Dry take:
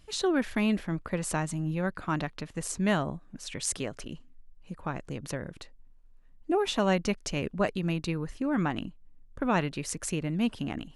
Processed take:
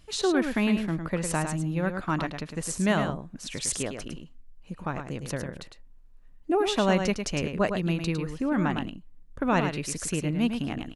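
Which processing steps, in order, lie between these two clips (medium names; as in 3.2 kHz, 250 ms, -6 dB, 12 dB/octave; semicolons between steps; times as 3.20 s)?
delay 106 ms -7 dB; trim +2 dB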